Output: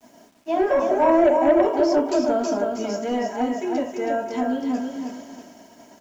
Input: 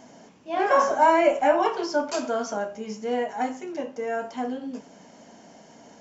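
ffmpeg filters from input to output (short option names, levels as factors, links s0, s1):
-filter_complex "[0:a]acrossover=split=670[s0][s1];[s1]acompressor=threshold=0.0112:ratio=6[s2];[s0][s2]amix=inputs=2:normalize=0,aecho=1:1:321|642|963|1284:0.562|0.191|0.065|0.0221,asplit=2[s3][s4];[s4]aeval=exprs='0.282*sin(PI/2*2.51*val(0)/0.282)':c=same,volume=0.251[s5];[s3][s5]amix=inputs=2:normalize=0,aecho=1:1:3.1:0.48,agate=range=0.0224:threshold=0.02:ratio=3:detection=peak,acrusher=bits=9:mix=0:aa=0.000001"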